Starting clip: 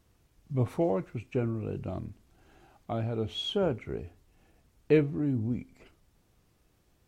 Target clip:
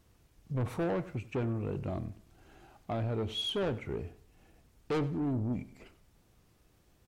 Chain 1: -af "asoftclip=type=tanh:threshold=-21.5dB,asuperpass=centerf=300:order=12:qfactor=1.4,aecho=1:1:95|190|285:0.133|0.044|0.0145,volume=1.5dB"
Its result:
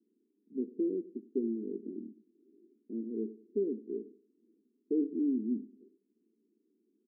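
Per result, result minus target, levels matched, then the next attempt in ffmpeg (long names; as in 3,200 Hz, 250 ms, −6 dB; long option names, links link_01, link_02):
soft clipping: distortion −6 dB; 250 Hz band +3.5 dB
-af "asoftclip=type=tanh:threshold=-29.5dB,asuperpass=centerf=300:order=12:qfactor=1.4,aecho=1:1:95|190|285:0.133|0.044|0.0145,volume=1.5dB"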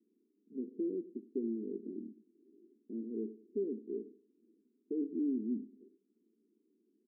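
250 Hz band +3.5 dB
-af "asoftclip=type=tanh:threshold=-29.5dB,aecho=1:1:95|190|285:0.133|0.044|0.0145,volume=1.5dB"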